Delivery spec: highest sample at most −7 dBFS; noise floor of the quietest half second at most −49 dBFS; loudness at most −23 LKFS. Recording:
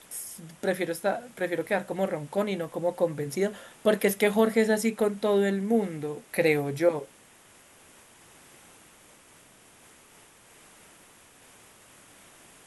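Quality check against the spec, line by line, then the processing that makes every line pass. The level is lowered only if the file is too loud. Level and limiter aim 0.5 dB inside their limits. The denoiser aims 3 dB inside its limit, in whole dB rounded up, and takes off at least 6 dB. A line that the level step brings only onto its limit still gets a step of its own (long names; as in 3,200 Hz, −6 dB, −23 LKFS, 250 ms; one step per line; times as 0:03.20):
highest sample −9.5 dBFS: in spec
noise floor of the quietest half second −56 dBFS: in spec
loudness −27.5 LKFS: in spec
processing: no processing needed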